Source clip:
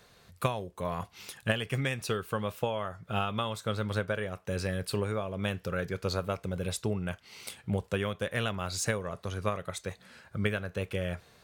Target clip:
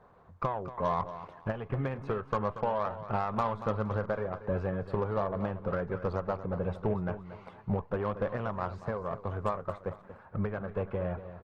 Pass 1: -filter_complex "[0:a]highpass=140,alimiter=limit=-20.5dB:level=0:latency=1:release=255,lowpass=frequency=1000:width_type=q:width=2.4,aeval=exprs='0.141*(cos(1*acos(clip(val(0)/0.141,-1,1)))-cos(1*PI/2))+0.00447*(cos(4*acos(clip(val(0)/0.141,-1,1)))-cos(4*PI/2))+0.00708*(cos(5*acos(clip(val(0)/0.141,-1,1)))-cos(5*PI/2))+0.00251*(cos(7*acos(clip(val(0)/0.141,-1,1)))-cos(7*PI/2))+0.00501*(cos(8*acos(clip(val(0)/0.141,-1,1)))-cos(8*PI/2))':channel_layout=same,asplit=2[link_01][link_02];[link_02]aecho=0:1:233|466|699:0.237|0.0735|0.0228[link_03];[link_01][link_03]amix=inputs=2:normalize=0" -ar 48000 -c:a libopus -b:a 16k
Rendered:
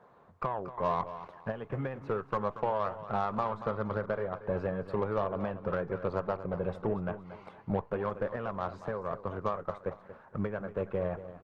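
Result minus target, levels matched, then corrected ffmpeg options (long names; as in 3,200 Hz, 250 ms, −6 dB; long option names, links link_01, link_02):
125 Hz band −3.0 dB
-filter_complex "[0:a]alimiter=limit=-20.5dB:level=0:latency=1:release=255,lowpass=frequency=1000:width_type=q:width=2.4,aeval=exprs='0.141*(cos(1*acos(clip(val(0)/0.141,-1,1)))-cos(1*PI/2))+0.00447*(cos(4*acos(clip(val(0)/0.141,-1,1)))-cos(4*PI/2))+0.00708*(cos(5*acos(clip(val(0)/0.141,-1,1)))-cos(5*PI/2))+0.00251*(cos(7*acos(clip(val(0)/0.141,-1,1)))-cos(7*PI/2))+0.00501*(cos(8*acos(clip(val(0)/0.141,-1,1)))-cos(8*PI/2))':channel_layout=same,asplit=2[link_01][link_02];[link_02]aecho=0:1:233|466|699:0.237|0.0735|0.0228[link_03];[link_01][link_03]amix=inputs=2:normalize=0" -ar 48000 -c:a libopus -b:a 16k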